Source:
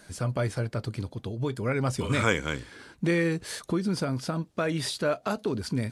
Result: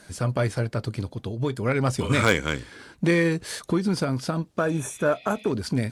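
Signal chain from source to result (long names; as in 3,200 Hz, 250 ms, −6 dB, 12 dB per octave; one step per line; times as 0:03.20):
healed spectral selection 0:04.61–0:05.49, 1,800–5,600 Hz before
harmonic generator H 5 −9 dB, 7 −13 dB, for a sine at −8.5 dBFS
level +1 dB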